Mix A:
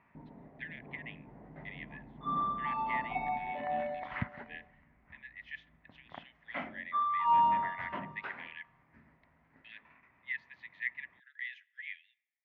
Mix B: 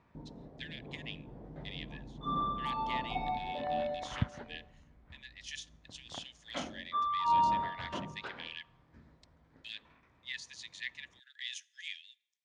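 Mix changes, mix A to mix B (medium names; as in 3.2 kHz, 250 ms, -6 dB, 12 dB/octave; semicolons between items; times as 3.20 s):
background: add cabinet simulation 100–3100 Hz, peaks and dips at 700 Hz +4 dB, 1 kHz +5 dB, 2.7 kHz -9 dB; master: remove cabinet simulation 170–2200 Hz, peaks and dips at 330 Hz -5 dB, 490 Hz -7 dB, 700 Hz +5 dB, 1 kHz +7 dB, 2 kHz +9 dB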